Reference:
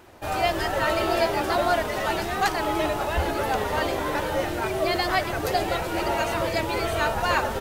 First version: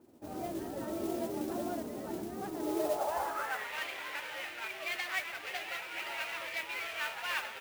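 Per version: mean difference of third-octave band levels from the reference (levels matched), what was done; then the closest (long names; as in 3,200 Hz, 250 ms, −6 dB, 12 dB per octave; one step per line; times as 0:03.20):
7.5 dB: gap after every zero crossing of 0.11 ms
band-pass filter sweep 260 Hz → 2,400 Hz, 0:02.52–0:03.72
noise that follows the level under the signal 15 dB
level −2 dB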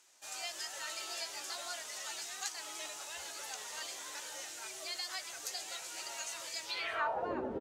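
11.0 dB: band-pass filter sweep 6,900 Hz → 300 Hz, 0:06.62–0:07.34
double-tracking delay 16 ms −11.5 dB
downward compressor 2 to 1, threshold −40 dBFS, peak gain reduction 8.5 dB
level +2.5 dB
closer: first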